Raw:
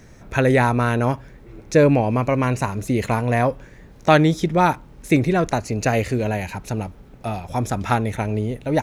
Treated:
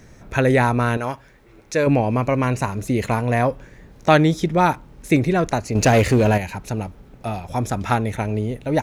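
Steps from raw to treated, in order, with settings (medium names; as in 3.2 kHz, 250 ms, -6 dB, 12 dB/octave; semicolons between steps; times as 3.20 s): 0.97–1.87 s: bass shelf 470 Hz -11 dB; 5.75–6.38 s: waveshaping leveller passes 2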